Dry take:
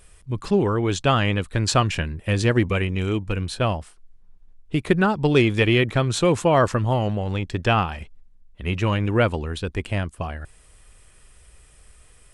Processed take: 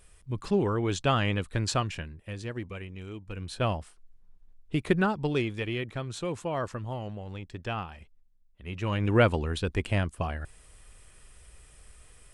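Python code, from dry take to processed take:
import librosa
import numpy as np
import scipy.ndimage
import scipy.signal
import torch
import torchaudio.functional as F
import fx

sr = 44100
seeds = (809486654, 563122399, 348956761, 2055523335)

y = fx.gain(x, sr, db=fx.line((1.56, -6.0), (2.38, -17.0), (3.19, -17.0), (3.64, -5.5), (4.99, -5.5), (5.6, -14.0), (8.66, -14.0), (9.13, -2.0)))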